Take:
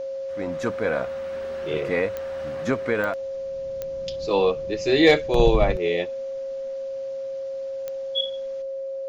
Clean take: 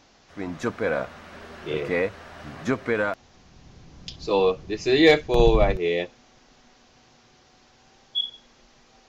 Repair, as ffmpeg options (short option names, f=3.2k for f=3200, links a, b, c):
-af "adeclick=t=4,bandreject=f=540:w=30,asetnsamples=n=441:p=0,asendcmd='8.62 volume volume 8dB',volume=0dB"